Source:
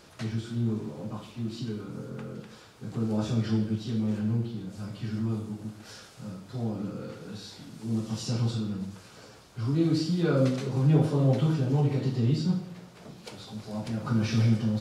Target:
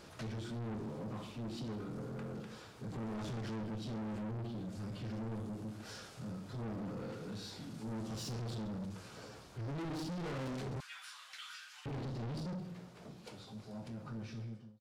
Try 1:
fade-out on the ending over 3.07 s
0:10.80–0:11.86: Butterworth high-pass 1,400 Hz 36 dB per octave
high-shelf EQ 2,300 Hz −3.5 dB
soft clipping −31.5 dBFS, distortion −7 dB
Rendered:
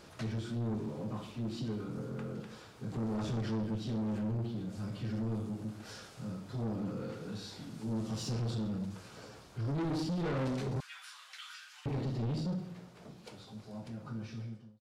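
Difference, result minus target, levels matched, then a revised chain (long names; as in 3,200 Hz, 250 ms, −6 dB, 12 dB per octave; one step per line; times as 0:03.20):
soft clipping: distortion −4 dB
fade-out on the ending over 3.07 s
0:10.80–0:11.86: Butterworth high-pass 1,400 Hz 36 dB per octave
high-shelf EQ 2,300 Hz −3.5 dB
soft clipping −39 dBFS, distortion −3 dB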